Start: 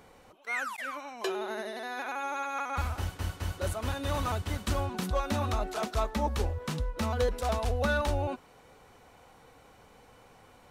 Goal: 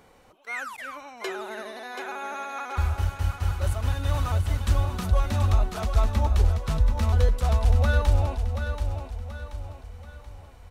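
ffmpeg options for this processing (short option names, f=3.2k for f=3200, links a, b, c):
-filter_complex "[0:a]asubboost=boost=4.5:cutoff=120,asplit=2[a][b];[b]aecho=0:1:731|1462|2193|2924|3655:0.422|0.177|0.0744|0.0312|0.0131[c];[a][c]amix=inputs=2:normalize=0"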